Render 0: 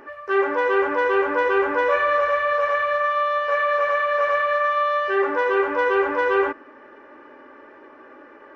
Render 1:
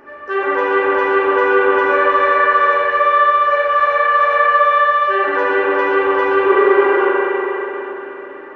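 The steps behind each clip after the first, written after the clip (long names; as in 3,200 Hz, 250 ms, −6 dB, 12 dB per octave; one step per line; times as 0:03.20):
healed spectral selection 0:06.48–0:07.03, 200–5,300 Hz before
spring reverb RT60 3.8 s, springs 40/59 ms, chirp 40 ms, DRR −6.5 dB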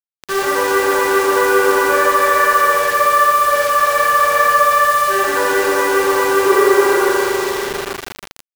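bit reduction 4 bits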